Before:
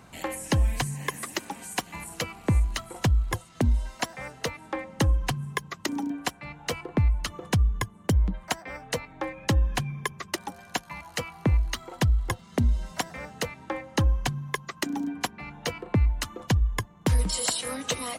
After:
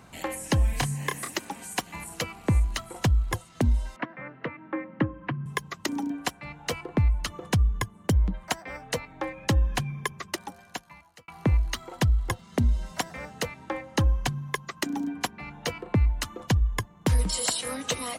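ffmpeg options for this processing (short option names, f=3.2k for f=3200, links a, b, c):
-filter_complex "[0:a]asettb=1/sr,asplit=3[a][b][c];[a]atrim=end=0.704[d];[b]atrim=start=0.7:end=1.31,asetpts=PTS-STARTPTS,afade=t=in:d=0.004:c=qsin,afade=t=out:st=0.606:d=0.004:c=qsin,asplit=2[e][f];[f]adelay=29,volume=-6dB[g];[e][g]amix=inputs=2:normalize=0,atrim=end_sample=26901[h];[c]atrim=start=1.306[i];[d][h]acrossfade=d=0.004:c1=hsin:c2=qsin[j];[j][i]acrossfade=d=0.004:c1=qsin:c2=hsin,asettb=1/sr,asplit=3[k][l][m];[k]atrim=end=3.964[n];[l]atrim=start=3.96:end=5.46,asetpts=PTS-STARTPTS,afade=t=in:d=0.004:c=qsin,afade=t=out:st=1.496:d=0.004:c=qsin,highpass=f=120:w=0.5412,highpass=f=120:w=1.3066,equalizer=f=310:t=q:w=4:g=6,equalizer=f=450:t=q:w=4:g=-5,equalizer=f=780:t=q:w=4:g=-9,lowpass=f=2.2k:w=0.5412,lowpass=f=2.2k:w=1.3066[o];[m]atrim=start=5.456[p];[n][o]acrossfade=d=0.004:c1=hsin:c2=qsin[q];[q][p]acrossfade=d=0.004:c1=qsin:c2=hsin,asplit=2[r][s];[r]atrim=end=11.28,asetpts=PTS-STARTPTS,afade=t=out:st=10.18:d=1.1[t];[s]atrim=start=11.28,asetpts=PTS-STARTPTS,afade=t=in:d=0.004:c=hsin[u];[t][u]concat=n=2:v=0:a=1"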